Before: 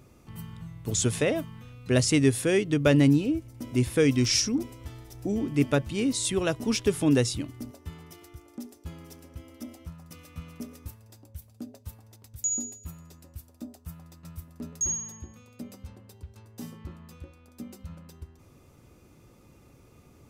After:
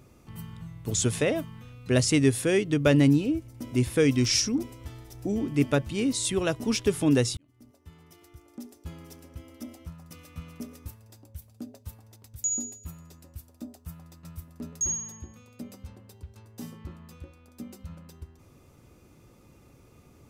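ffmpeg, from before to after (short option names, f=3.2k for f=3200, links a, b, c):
-filter_complex "[0:a]asplit=2[a][b];[a]atrim=end=7.37,asetpts=PTS-STARTPTS,afade=t=out:st=7.366:d=0.004:c=hsin[c];[b]atrim=start=7.37,asetpts=PTS-STARTPTS,afade=t=in:d=1.53[d];[c][d]concat=n=2:v=0:a=1"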